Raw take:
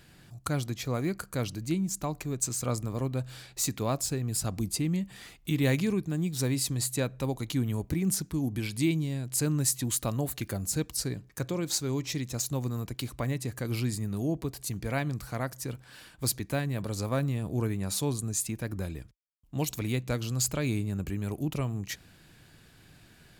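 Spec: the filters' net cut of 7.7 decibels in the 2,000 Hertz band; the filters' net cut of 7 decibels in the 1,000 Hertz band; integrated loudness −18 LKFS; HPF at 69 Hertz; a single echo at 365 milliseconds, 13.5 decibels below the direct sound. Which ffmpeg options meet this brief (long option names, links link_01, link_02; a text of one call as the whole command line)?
ffmpeg -i in.wav -af "highpass=69,equalizer=frequency=1000:width_type=o:gain=-8,equalizer=frequency=2000:width_type=o:gain=-7.5,aecho=1:1:365:0.211,volume=14dB" out.wav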